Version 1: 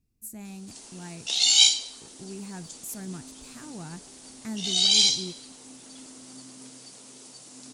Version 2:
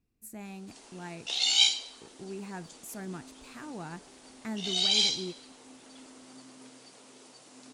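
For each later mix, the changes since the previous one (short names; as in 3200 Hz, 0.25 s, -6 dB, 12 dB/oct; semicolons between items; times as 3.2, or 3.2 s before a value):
speech +3.5 dB; master: add tone controls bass -9 dB, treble -11 dB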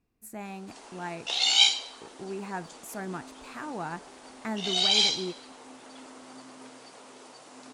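master: add bell 960 Hz +9 dB 2.6 oct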